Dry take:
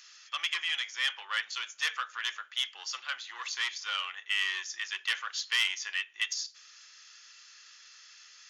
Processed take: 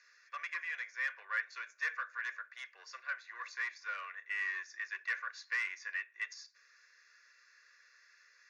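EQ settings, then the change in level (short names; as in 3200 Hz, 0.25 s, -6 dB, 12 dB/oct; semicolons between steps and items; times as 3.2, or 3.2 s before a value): BPF 420–2900 Hz; Butterworth band-stop 1300 Hz, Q 6.9; fixed phaser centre 850 Hz, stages 6; 0.0 dB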